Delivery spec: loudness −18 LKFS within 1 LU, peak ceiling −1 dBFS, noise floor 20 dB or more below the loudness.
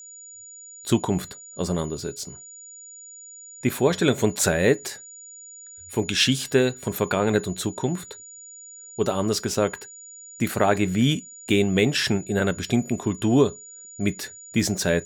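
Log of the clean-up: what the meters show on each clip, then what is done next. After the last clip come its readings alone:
interfering tone 6,900 Hz; level of the tone −41 dBFS; integrated loudness −23.5 LKFS; sample peak −6.0 dBFS; target loudness −18.0 LKFS
→ notch filter 6,900 Hz, Q 30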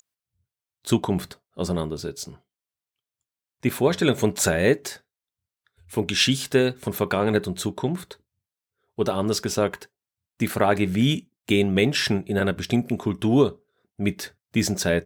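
interfering tone none found; integrated loudness −24.0 LKFS; sample peak −6.0 dBFS; target loudness −18.0 LKFS
→ level +6 dB
brickwall limiter −1 dBFS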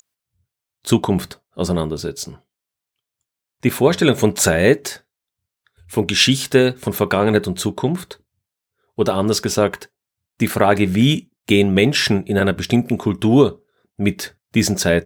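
integrated loudness −18.0 LKFS; sample peak −1.0 dBFS; background noise floor −85 dBFS

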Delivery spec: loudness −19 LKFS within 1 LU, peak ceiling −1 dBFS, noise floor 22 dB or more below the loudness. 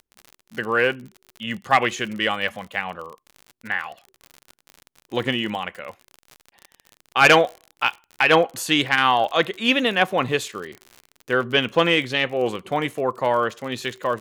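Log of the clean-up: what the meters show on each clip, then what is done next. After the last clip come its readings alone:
crackle rate 47 per second; integrated loudness −21.0 LKFS; sample peak −5.0 dBFS; target loudness −19.0 LKFS
→ click removal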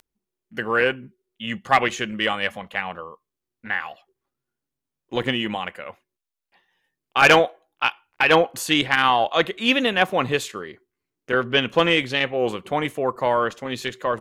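crackle rate 0.42 per second; integrated loudness −21.5 LKFS; sample peak −2.5 dBFS; target loudness −19.0 LKFS
→ level +2.5 dB
brickwall limiter −1 dBFS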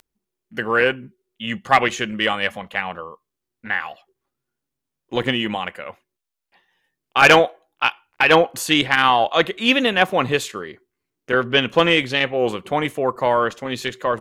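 integrated loudness −19.0 LKFS; sample peak −1.0 dBFS; background noise floor −82 dBFS

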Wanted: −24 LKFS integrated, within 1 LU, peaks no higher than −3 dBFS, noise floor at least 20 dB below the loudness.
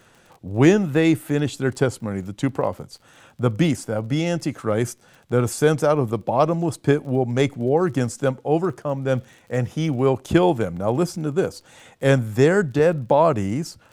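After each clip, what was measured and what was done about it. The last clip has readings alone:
crackle rate 29 per second; integrated loudness −21.5 LKFS; sample peak −3.0 dBFS; target loudness −24.0 LKFS
→ click removal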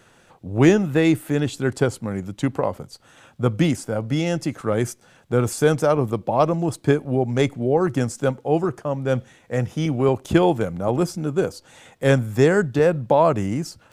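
crackle rate 0.072 per second; integrated loudness −21.5 LKFS; sample peak −3.0 dBFS; target loudness −24.0 LKFS
→ level −2.5 dB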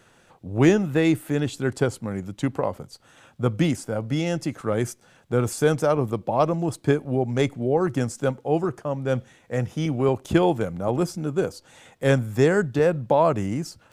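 integrated loudness −24.0 LKFS; sample peak −5.5 dBFS; background noise floor −58 dBFS

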